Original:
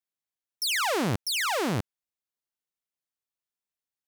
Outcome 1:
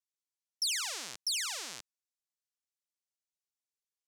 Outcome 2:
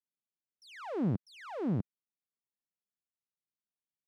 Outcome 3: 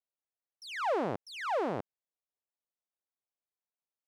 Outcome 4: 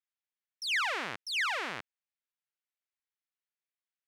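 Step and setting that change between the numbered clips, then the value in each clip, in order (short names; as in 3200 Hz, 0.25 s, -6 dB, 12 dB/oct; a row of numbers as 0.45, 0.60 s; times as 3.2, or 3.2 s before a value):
band-pass, frequency: 6400, 190, 620, 2000 Hz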